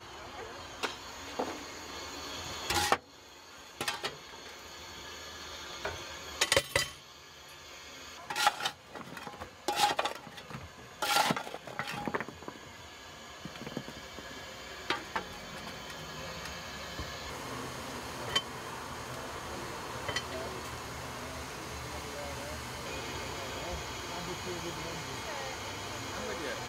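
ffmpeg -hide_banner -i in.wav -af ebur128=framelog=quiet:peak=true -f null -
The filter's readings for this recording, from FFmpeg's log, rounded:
Integrated loudness:
  I:         -36.5 LUFS
  Threshold: -46.8 LUFS
Loudness range:
  LRA:         7.2 LU
  Threshold: -56.6 LUFS
  LRA low:   -40.6 LUFS
  LRA high:  -33.4 LUFS
True peak:
  Peak:      -11.7 dBFS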